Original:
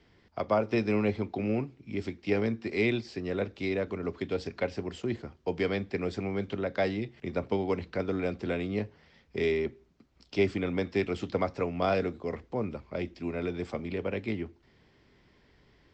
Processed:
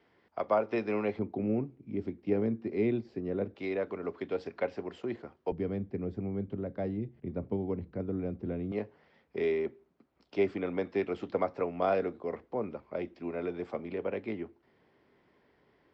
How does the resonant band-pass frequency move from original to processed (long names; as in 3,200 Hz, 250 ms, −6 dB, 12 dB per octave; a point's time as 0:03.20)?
resonant band-pass, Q 0.56
840 Hz
from 0:01.19 260 Hz
from 0:03.55 750 Hz
from 0:05.52 140 Hz
from 0:08.72 660 Hz